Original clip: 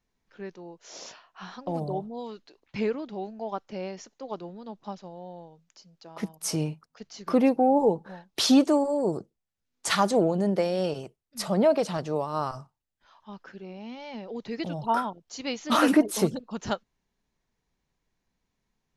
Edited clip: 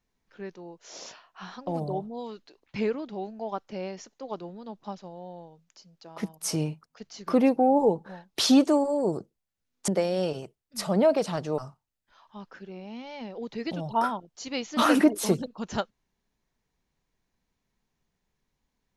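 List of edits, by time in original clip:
0:09.88–0:10.49: remove
0:12.19–0:12.51: remove

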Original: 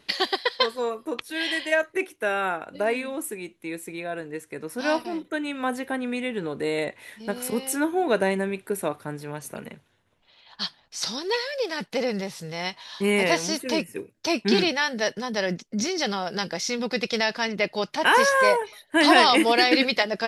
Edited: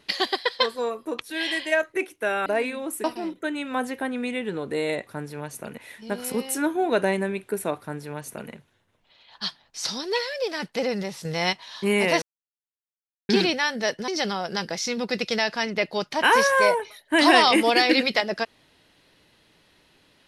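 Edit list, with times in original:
0:02.46–0:02.77: remove
0:03.35–0:04.93: remove
0:08.98–0:09.69: duplicate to 0:06.96
0:12.43–0:12.71: clip gain +6 dB
0:13.40–0:14.47: silence
0:15.26–0:15.90: remove

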